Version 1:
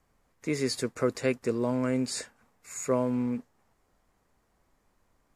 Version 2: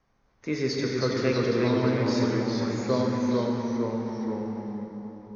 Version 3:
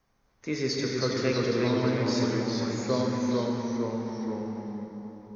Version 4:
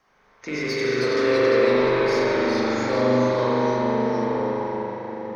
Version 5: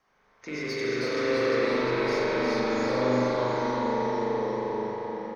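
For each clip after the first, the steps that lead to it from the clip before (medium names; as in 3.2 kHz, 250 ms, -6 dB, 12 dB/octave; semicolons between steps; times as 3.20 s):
Chebyshev low-pass 6.4 kHz, order 8; plate-style reverb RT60 3.5 s, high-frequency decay 0.65×, DRR 0 dB; ever faster or slower copies 279 ms, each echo -1 st, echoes 3
treble shelf 5.8 kHz +9.5 dB; trim -2 dB
compression 1.5:1, threshold -39 dBFS, peak gain reduction 6.5 dB; overdrive pedal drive 17 dB, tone 3 kHz, clips at -18 dBFS; spring tank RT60 3.1 s, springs 40 ms, chirp 65 ms, DRR -7.5 dB
feedback delay 354 ms, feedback 53%, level -5 dB; trim -6 dB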